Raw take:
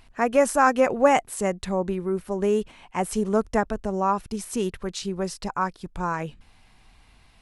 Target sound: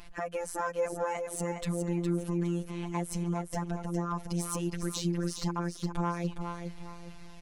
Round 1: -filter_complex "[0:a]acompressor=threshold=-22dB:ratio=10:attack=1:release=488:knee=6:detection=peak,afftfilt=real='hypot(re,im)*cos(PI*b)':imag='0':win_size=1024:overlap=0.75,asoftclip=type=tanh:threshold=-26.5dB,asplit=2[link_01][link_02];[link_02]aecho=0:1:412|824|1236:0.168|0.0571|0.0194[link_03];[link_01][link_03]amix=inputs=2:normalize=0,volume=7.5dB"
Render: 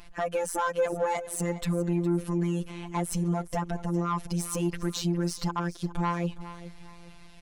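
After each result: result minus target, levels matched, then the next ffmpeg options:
downward compressor: peak gain reduction −7 dB; echo-to-direct −9 dB
-filter_complex "[0:a]acompressor=threshold=-30dB:ratio=10:attack=1:release=488:knee=6:detection=peak,afftfilt=real='hypot(re,im)*cos(PI*b)':imag='0':win_size=1024:overlap=0.75,asoftclip=type=tanh:threshold=-26.5dB,asplit=2[link_01][link_02];[link_02]aecho=0:1:412|824|1236:0.168|0.0571|0.0194[link_03];[link_01][link_03]amix=inputs=2:normalize=0,volume=7.5dB"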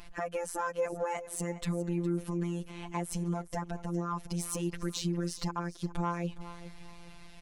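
echo-to-direct −9 dB
-filter_complex "[0:a]acompressor=threshold=-30dB:ratio=10:attack=1:release=488:knee=6:detection=peak,afftfilt=real='hypot(re,im)*cos(PI*b)':imag='0':win_size=1024:overlap=0.75,asoftclip=type=tanh:threshold=-26.5dB,asplit=2[link_01][link_02];[link_02]aecho=0:1:412|824|1236|1648:0.473|0.161|0.0547|0.0186[link_03];[link_01][link_03]amix=inputs=2:normalize=0,volume=7.5dB"

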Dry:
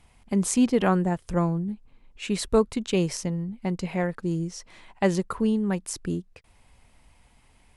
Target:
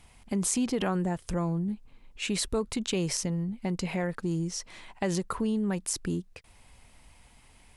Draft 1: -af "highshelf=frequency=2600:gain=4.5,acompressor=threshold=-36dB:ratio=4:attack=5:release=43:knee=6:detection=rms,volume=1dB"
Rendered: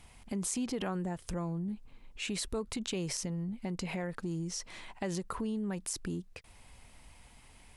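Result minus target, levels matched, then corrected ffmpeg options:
downward compressor: peak gain reduction +7 dB
-af "highshelf=frequency=2600:gain=4.5,acompressor=threshold=-27dB:ratio=4:attack=5:release=43:knee=6:detection=rms,volume=1dB"

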